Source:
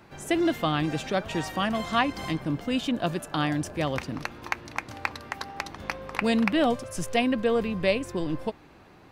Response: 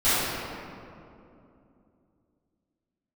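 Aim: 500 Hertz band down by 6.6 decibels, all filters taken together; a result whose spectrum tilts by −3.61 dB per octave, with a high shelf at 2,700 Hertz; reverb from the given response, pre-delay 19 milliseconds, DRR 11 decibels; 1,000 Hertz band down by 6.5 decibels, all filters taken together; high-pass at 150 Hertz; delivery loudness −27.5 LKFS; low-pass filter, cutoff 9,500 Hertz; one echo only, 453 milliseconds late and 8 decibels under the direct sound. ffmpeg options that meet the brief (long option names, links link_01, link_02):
-filter_complex "[0:a]highpass=150,lowpass=9500,equalizer=frequency=500:width_type=o:gain=-6.5,equalizer=frequency=1000:width_type=o:gain=-8,highshelf=frequency=2700:gain=8.5,aecho=1:1:453:0.398,asplit=2[link_01][link_02];[1:a]atrim=start_sample=2205,adelay=19[link_03];[link_02][link_03]afir=irnorm=-1:irlink=0,volume=-29.5dB[link_04];[link_01][link_04]amix=inputs=2:normalize=0,volume=1dB"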